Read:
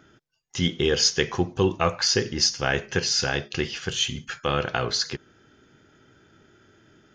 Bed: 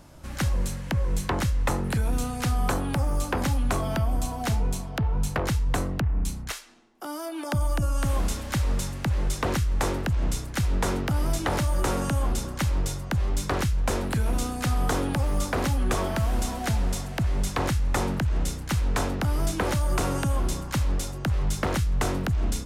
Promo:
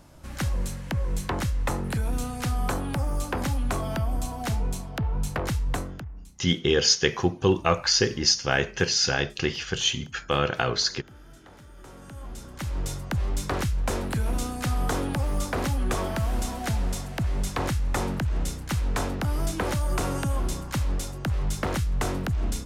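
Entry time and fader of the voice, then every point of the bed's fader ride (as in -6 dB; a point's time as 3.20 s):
5.85 s, +0.5 dB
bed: 5.73 s -2 dB
6.42 s -25 dB
11.70 s -25 dB
12.92 s -1.5 dB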